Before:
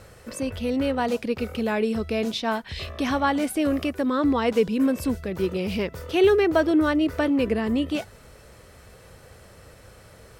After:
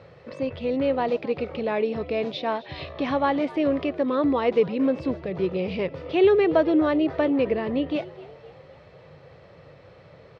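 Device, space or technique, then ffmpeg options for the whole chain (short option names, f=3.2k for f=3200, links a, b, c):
frequency-shifting delay pedal into a guitar cabinet: -filter_complex "[0:a]asplit=5[a][b][c][d][e];[b]adelay=257,afreqshift=78,volume=-19.5dB[f];[c]adelay=514,afreqshift=156,volume=-25.3dB[g];[d]adelay=771,afreqshift=234,volume=-31.2dB[h];[e]adelay=1028,afreqshift=312,volume=-37dB[i];[a][f][g][h][i]amix=inputs=5:normalize=0,highpass=110,equalizer=f=150:t=q:w=4:g=8,equalizer=f=220:t=q:w=4:g=-7,equalizer=f=550:t=q:w=4:g=4,equalizer=f=1.5k:t=q:w=4:g=-7,equalizer=f=3k:t=q:w=4:g=-4,lowpass=f=3.8k:w=0.5412,lowpass=f=3.8k:w=1.3066"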